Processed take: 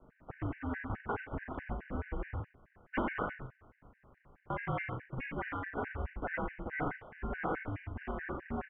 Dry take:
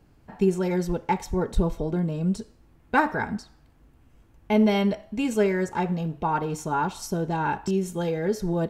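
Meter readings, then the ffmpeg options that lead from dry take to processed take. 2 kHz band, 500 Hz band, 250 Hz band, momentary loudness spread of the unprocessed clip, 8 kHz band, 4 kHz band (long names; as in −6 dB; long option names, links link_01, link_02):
−7.5 dB, −16.0 dB, −16.5 dB, 6 LU, below −40 dB, −21.5 dB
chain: -filter_complex "[0:a]equalizer=frequency=63:width=0.51:gain=5.5,acrossover=split=120|1300[link_01][link_02][link_03];[link_02]acompressor=threshold=-37dB:ratio=8[link_04];[link_01][link_04][link_03]amix=inputs=3:normalize=0,acrusher=bits=3:mode=log:mix=0:aa=0.000001,aresample=8000,aeval=exprs='abs(val(0))':channel_layout=same,aresample=44100,acrusher=samples=5:mix=1:aa=0.000001,asoftclip=type=tanh:threshold=-11.5dB,asplit=2[link_05][link_06];[link_06]adelay=39,volume=-5.5dB[link_07];[link_05][link_07]amix=inputs=2:normalize=0,aecho=1:1:87:0.562,highpass=frequency=240:width_type=q:width=0.5412,highpass=frequency=240:width_type=q:width=1.307,lowpass=frequency=2300:width_type=q:width=0.5176,lowpass=frequency=2300:width_type=q:width=0.7071,lowpass=frequency=2300:width_type=q:width=1.932,afreqshift=-280,afftfilt=real='re*gt(sin(2*PI*4.7*pts/sr)*(1-2*mod(floor(b*sr/1024/1500),2)),0)':imag='im*gt(sin(2*PI*4.7*pts/sr)*(1-2*mod(floor(b*sr/1024/1500),2)),0)':win_size=1024:overlap=0.75,volume=3.5dB"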